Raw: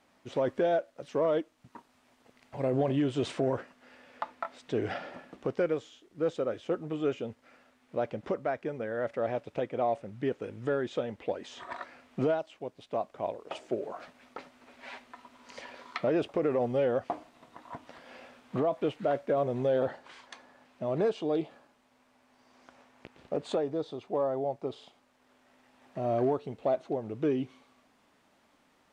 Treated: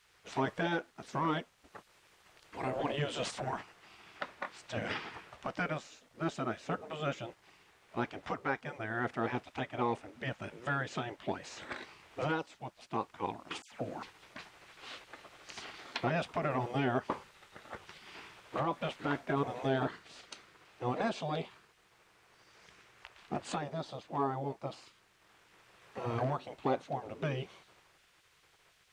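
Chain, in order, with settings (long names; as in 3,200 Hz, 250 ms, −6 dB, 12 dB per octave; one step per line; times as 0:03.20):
gate on every frequency bin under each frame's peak −10 dB weak
0:13.62–0:14.03: all-pass dispersion lows, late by 96 ms, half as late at 2,100 Hz
level +5 dB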